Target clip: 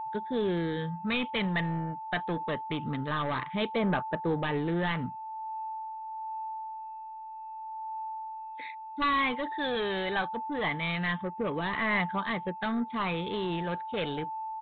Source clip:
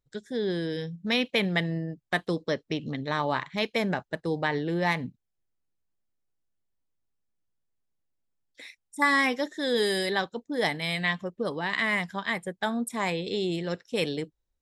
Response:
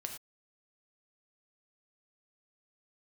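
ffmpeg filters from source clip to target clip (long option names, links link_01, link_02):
-af "equalizer=frequency=1200:width_type=o:width=0.53:gain=7.5,aeval=exprs='val(0)+0.0141*sin(2*PI*880*n/s)':channel_layout=same,aresample=8000,asoftclip=type=tanh:threshold=-25dB,aresample=44100,aphaser=in_gain=1:out_gain=1:delay=1.4:decay=0.35:speed=0.25:type=triangular"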